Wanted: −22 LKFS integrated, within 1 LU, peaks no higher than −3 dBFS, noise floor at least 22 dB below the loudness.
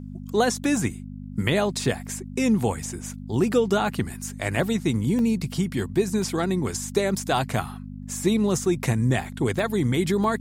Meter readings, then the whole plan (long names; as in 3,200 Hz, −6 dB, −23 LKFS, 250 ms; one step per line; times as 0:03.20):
number of dropouts 6; longest dropout 1.1 ms; mains hum 50 Hz; hum harmonics up to 250 Hz; level of the hum −34 dBFS; integrated loudness −24.5 LKFS; sample peak −9.0 dBFS; target loudness −22.0 LKFS
→ repair the gap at 0:04.56/0:05.19/0:06.22/0:08.23/0:09.59/0:10.24, 1.1 ms
hum removal 50 Hz, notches 5
level +2.5 dB